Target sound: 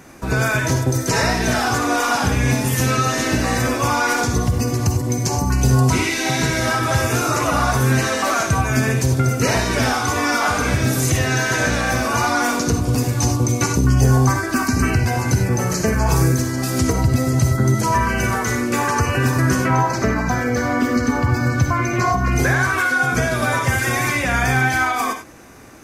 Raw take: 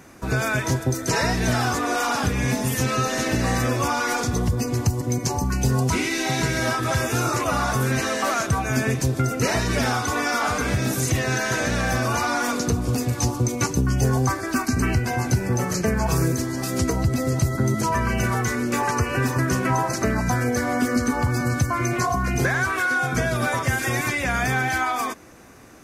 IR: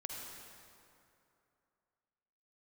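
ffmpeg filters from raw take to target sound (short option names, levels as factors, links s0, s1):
-filter_complex "[0:a]asettb=1/sr,asplit=3[s0][s1][s2];[s0]atrim=end=19.644[s3];[s1]atrim=start=19.64:end=22.32,asetpts=PTS-STARTPTS,afade=t=in:d=0.004:c=qsin,afade=t=out:st=2.676:d=0.004:c=qsin,equalizer=f=10000:t=o:w=0.85:g=-13.5[s4];[s2]atrim=start=22.316[s5];[s3][s4]acrossfade=d=0.004:c1=hsin:c2=qsin[s6];[s6][s5]acrossfade=d=0.004:c1=qsin:c2=hsin[s7];[1:a]atrim=start_sample=2205,afade=t=out:st=0.15:d=0.01,atrim=end_sample=7056[s8];[s7][s8]afir=irnorm=-1:irlink=0,volume=2.37"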